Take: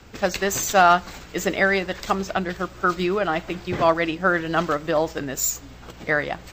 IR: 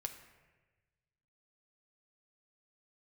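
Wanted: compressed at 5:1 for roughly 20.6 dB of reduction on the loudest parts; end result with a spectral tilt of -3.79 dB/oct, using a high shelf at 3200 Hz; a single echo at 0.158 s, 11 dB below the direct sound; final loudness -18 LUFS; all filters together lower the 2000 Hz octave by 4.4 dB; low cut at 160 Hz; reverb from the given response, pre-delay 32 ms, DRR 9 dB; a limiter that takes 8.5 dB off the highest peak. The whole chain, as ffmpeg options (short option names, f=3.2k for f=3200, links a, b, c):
-filter_complex "[0:a]highpass=160,equalizer=f=2k:t=o:g=-4.5,highshelf=f=3.2k:g=-5,acompressor=threshold=-36dB:ratio=5,alimiter=level_in=5.5dB:limit=-24dB:level=0:latency=1,volume=-5.5dB,aecho=1:1:158:0.282,asplit=2[a][b];[1:a]atrim=start_sample=2205,adelay=32[c];[b][c]afir=irnorm=-1:irlink=0,volume=-7dB[d];[a][d]amix=inputs=2:normalize=0,volume=22dB"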